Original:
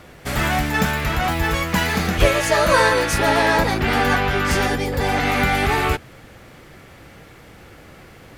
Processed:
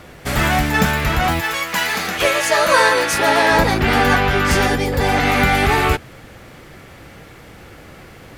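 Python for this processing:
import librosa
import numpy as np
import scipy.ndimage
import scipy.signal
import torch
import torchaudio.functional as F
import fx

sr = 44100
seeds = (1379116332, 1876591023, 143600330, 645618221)

y = fx.highpass(x, sr, hz=fx.line((1.39, 1200.0), (3.5, 300.0)), slope=6, at=(1.39, 3.5), fade=0.02)
y = F.gain(torch.from_numpy(y), 3.5).numpy()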